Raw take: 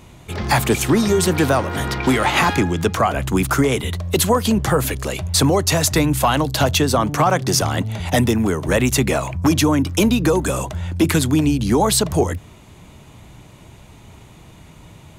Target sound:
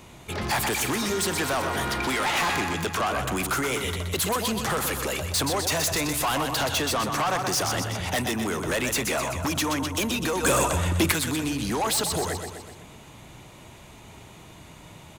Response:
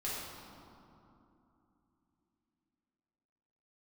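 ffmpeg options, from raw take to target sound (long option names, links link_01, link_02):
-filter_complex "[0:a]lowshelf=frequency=200:gain=-8,acrossover=split=770|1500[link_01][link_02][link_03];[link_01]acompressor=threshold=-24dB:ratio=6[link_04];[link_04][link_02][link_03]amix=inputs=3:normalize=0,aecho=1:1:125|250|375|500|625|750:0.355|0.188|0.0997|0.0528|0.028|0.0148,asoftclip=type=tanh:threshold=-21.5dB,asettb=1/sr,asplit=3[link_05][link_06][link_07];[link_05]atrim=end=10.434[link_08];[link_06]atrim=start=10.43:end=11.12,asetpts=PTS-STARTPTS,afade=type=in:duration=0.004:curve=qsin,afade=type=out:start_time=0.686:duration=0.004:curve=qsin,acontrast=57[link_09];[link_07]atrim=start=11.116[link_10];[link_08][link_09]acrossfade=duration=0.004:curve1=hsin:curve2=qsin[link_11];[link_11][link_10]acrossfade=duration=0.004:curve1=qsin:curve2=hsin"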